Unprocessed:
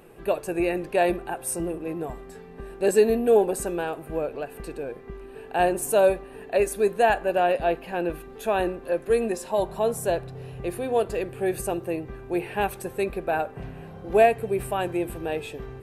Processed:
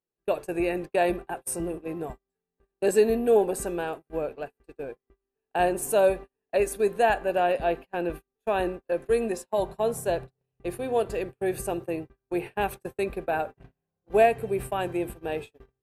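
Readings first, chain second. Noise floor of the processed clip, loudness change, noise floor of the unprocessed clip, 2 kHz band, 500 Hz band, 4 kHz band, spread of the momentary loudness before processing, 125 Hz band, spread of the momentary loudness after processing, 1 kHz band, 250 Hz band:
under -85 dBFS, -2.0 dB, -44 dBFS, -2.0 dB, -2.0 dB, -2.5 dB, 15 LU, -3.5 dB, 13 LU, -2.0 dB, -2.0 dB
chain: gate -32 dBFS, range -42 dB; trim -2 dB

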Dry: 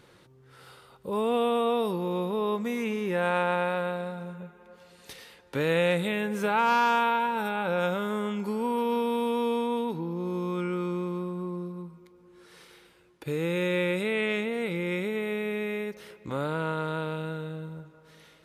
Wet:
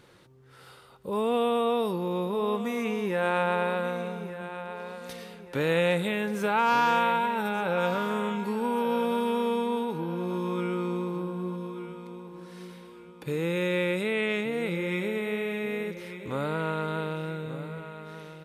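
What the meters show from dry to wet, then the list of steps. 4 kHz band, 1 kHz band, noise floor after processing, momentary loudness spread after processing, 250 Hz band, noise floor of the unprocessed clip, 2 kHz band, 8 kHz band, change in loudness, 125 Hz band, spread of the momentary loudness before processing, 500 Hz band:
+0.5 dB, +0.5 dB, -52 dBFS, 16 LU, 0.0 dB, -57 dBFS, +0.5 dB, +0.5 dB, 0.0 dB, 0.0 dB, 14 LU, 0.0 dB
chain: feedback delay 1183 ms, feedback 39%, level -12 dB

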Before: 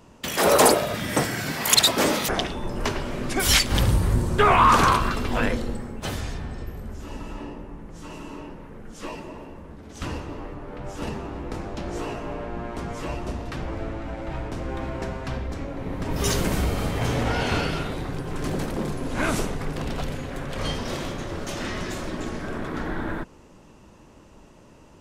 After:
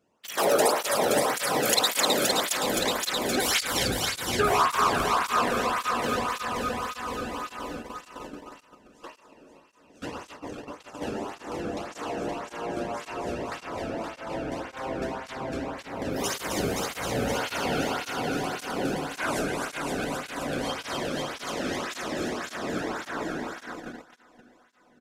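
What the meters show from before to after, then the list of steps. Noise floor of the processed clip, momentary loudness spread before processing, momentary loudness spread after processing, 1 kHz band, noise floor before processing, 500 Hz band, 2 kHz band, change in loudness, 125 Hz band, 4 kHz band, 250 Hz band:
-58 dBFS, 19 LU, 16 LU, -2.5 dB, -50 dBFS, -1.0 dB, -1.5 dB, -3.0 dB, -11.5 dB, -2.5 dB, -3.5 dB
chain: echo whose repeats swap between lows and highs 130 ms, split 1.5 kHz, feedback 88%, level -3 dB; compression 2:1, threshold -20 dBFS, peak gain reduction 6.5 dB; feedback delay 524 ms, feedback 50%, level -9 dB; gate -29 dBFS, range -16 dB; cancelling through-zero flanger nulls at 1.8 Hz, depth 1.1 ms

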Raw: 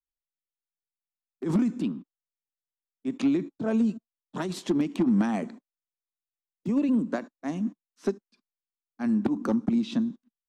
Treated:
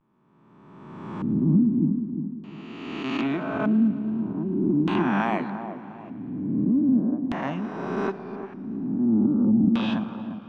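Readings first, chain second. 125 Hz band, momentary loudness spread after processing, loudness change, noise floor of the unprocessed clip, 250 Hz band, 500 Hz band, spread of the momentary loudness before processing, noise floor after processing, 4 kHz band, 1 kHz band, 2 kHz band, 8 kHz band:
+7.5 dB, 16 LU, +3.5 dB, under -85 dBFS, +4.5 dB, +2.0 dB, 11 LU, -54 dBFS, +4.0 dB, +8.5 dB, +8.0 dB, no reading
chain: reverse spectral sustain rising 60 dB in 1.84 s; bass shelf 110 Hz -6.5 dB; vibrato 0.48 Hz 42 cents; graphic EQ 125/250/500/1000/4000 Hz +3/-4/-5/+10/-6 dB; on a send: feedback echo behind a low-pass 352 ms, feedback 37%, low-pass 1.1 kHz, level -8.5 dB; on the sum: LFO low-pass square 0.41 Hz 260–3100 Hz; modulated delay 111 ms, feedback 79%, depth 81 cents, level -20.5 dB

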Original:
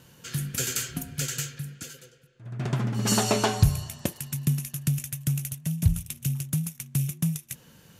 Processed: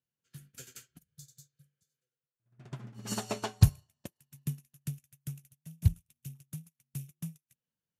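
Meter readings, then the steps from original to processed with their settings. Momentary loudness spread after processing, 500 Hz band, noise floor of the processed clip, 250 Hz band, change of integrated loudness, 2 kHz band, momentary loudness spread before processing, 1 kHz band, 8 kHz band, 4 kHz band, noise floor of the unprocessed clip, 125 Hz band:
24 LU, -12.5 dB, under -85 dBFS, -11.5 dB, -6.0 dB, -14.0 dB, 14 LU, -12.5 dB, -15.5 dB, -13.0 dB, -56 dBFS, -6.5 dB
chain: spectral replace 1.00–1.94 s, 200–3400 Hz after; upward expansion 2.5:1, over -41 dBFS

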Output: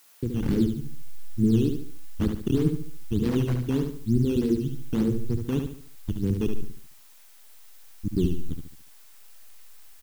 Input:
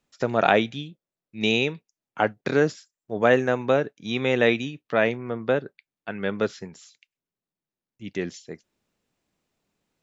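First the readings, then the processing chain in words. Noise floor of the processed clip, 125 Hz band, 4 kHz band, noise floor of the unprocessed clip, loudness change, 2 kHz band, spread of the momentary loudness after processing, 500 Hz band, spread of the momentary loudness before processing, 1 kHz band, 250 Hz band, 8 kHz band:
-51 dBFS, +7.5 dB, -12.0 dB, under -85 dBFS, -2.5 dB, -21.0 dB, 14 LU, -9.0 dB, 20 LU, -20.0 dB, +4.0 dB, no reading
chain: median filter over 41 samples; spectral gate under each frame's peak -25 dB strong; hysteresis with a dead band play -25.5 dBFS; level rider gain up to 11.5 dB; FFT filter 230 Hz 0 dB, 500 Hz +6 dB, 920 Hz -21 dB, 1.6 kHz +6 dB; reverb removal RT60 1.4 s; saturation -18.5 dBFS, distortion -4 dB; inverse Chebyshev band-stop 740–2100 Hz, stop band 60 dB; decimation with a swept rate 10×, swing 100% 3.3 Hz; added noise blue -53 dBFS; treble shelf 2.6 kHz -9.5 dB; on a send: feedback delay 72 ms, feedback 38%, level -6 dB; on the sum: trim +5.5 dB

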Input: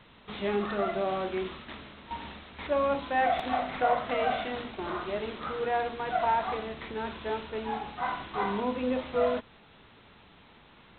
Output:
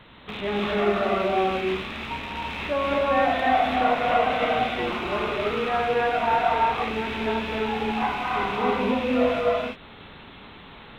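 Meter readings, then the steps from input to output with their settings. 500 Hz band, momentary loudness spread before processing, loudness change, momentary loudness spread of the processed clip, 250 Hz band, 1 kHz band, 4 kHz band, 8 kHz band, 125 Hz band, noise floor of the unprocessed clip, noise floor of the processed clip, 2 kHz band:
+6.5 dB, 13 LU, +6.5 dB, 12 LU, +7.5 dB, +7.0 dB, +9.0 dB, no reading, +8.0 dB, -56 dBFS, -45 dBFS, +8.5 dB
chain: rattle on loud lows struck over -49 dBFS, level -30 dBFS; in parallel at 0 dB: compression, threshold -41 dBFS, peak gain reduction 19 dB; on the sum: gated-style reverb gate 360 ms rising, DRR -4 dB

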